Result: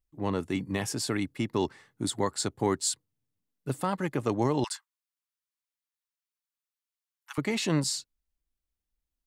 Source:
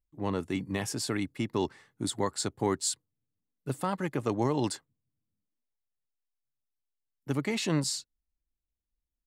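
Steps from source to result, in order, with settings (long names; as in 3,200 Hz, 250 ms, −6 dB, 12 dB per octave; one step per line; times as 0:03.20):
0:04.64–0:07.38: Butterworth high-pass 930 Hz 48 dB per octave
level +1.5 dB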